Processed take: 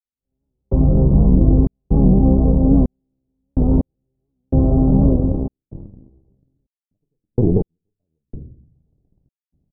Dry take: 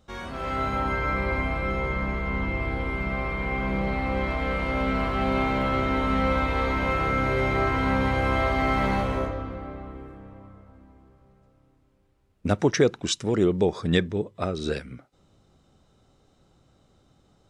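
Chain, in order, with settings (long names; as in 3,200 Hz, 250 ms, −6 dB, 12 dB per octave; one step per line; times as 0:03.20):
gain on one half-wave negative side −7 dB
downward compressor 16 to 1, threshold −27 dBFS, peak gain reduction 12.5 dB
leveller curve on the samples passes 2
automatic gain control gain up to 14 dB
harmonic generator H 2 −38 dB, 3 −36 dB, 5 −18 dB, 7 −14 dB, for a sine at −2.5 dBFS
Gaussian smoothing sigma 15 samples
low-shelf EQ 270 Hz +10.5 dB
convolution reverb RT60 0.80 s, pre-delay 7 ms, DRR 7 dB
tempo change 1.8×
gate pattern "...xxxx.xxxx...x" 63 BPM −60 dB
wow of a warped record 78 rpm, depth 100 cents
level −4.5 dB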